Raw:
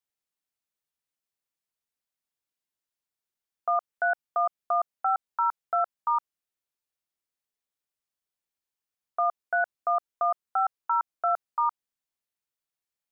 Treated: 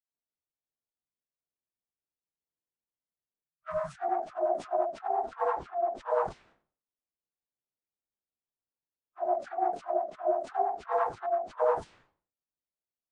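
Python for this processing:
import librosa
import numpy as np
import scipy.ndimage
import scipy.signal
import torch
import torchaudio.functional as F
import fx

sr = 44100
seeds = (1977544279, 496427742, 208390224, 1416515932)

y = fx.phase_scramble(x, sr, seeds[0], window_ms=100)
y = fx.env_lowpass(y, sr, base_hz=700.0, full_db=-25.5)
y = fx.spec_erase(y, sr, start_s=3.37, length_s=0.57, low_hz=350.0, high_hz=1200.0)
y = fx.dispersion(y, sr, late='lows', ms=88.0, hz=940.0)
y = fx.pitch_keep_formants(y, sr, semitones=-11.5)
y = fx.sustainer(y, sr, db_per_s=130.0)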